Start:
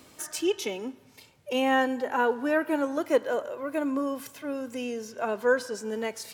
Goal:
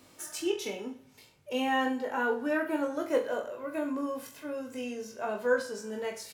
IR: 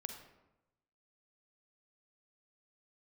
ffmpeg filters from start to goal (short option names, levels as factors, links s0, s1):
-af "aecho=1:1:20|42|66.2|92.82|122.1:0.631|0.398|0.251|0.158|0.1,volume=0.501"